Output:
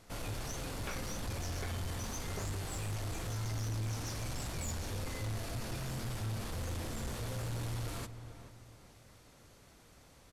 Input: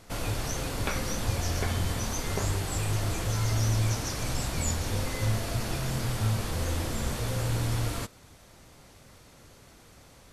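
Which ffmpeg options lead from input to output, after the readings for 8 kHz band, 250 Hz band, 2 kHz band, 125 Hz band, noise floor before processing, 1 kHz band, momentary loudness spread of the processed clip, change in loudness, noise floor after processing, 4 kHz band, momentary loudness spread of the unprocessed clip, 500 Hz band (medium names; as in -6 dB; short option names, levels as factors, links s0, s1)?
-9.5 dB, -9.0 dB, -9.0 dB, -9.5 dB, -55 dBFS, -9.0 dB, 14 LU, -9.5 dB, -60 dBFS, -9.0 dB, 4 LU, -9.0 dB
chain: -filter_complex "[0:a]asplit=2[s0][s1];[s1]adelay=437,lowpass=f=1800:p=1,volume=0.224,asplit=2[s2][s3];[s3]adelay=437,lowpass=f=1800:p=1,volume=0.35,asplit=2[s4][s5];[s5]adelay=437,lowpass=f=1800:p=1,volume=0.35[s6];[s0][s2][s4][s6]amix=inputs=4:normalize=0,asoftclip=type=tanh:threshold=0.0473,volume=0.473"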